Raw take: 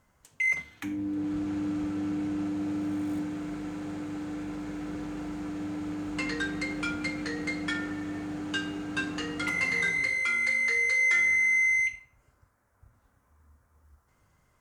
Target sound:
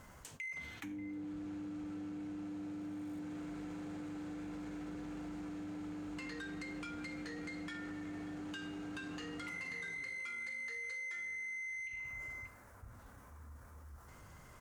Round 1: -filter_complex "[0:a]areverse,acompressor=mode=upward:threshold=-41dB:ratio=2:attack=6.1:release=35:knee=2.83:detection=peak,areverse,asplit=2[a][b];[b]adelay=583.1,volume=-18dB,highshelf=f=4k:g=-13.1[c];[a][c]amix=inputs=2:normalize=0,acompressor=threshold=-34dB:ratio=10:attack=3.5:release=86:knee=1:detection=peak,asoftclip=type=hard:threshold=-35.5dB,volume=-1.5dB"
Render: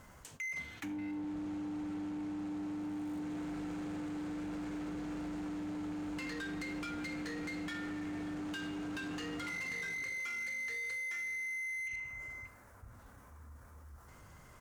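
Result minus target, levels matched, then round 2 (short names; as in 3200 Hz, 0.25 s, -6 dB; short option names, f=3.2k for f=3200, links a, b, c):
compressor: peak gain reduction -5.5 dB
-filter_complex "[0:a]areverse,acompressor=mode=upward:threshold=-41dB:ratio=2:attack=6.1:release=35:knee=2.83:detection=peak,areverse,asplit=2[a][b];[b]adelay=583.1,volume=-18dB,highshelf=f=4k:g=-13.1[c];[a][c]amix=inputs=2:normalize=0,acompressor=threshold=-40dB:ratio=10:attack=3.5:release=86:knee=1:detection=peak,asoftclip=type=hard:threshold=-35.5dB,volume=-1.5dB"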